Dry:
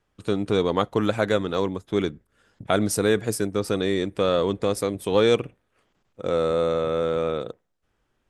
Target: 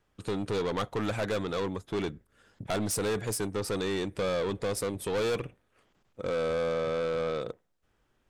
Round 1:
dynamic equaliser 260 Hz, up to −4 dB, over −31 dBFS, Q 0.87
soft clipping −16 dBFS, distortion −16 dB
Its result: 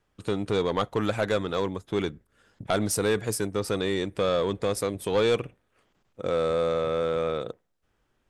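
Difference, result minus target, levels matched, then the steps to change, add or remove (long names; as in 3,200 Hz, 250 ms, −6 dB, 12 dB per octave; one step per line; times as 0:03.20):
soft clipping: distortion −9 dB
change: soft clipping −26 dBFS, distortion −7 dB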